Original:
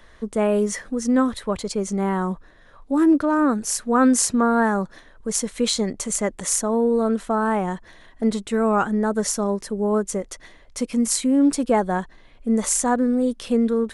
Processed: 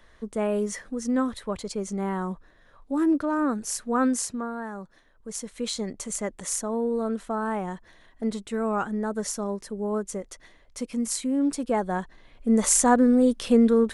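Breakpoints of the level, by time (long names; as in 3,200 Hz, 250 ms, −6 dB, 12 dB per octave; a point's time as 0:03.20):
0:04.01 −6 dB
0:04.61 −16 dB
0:05.94 −7 dB
0:11.62 −7 dB
0:12.79 +1.5 dB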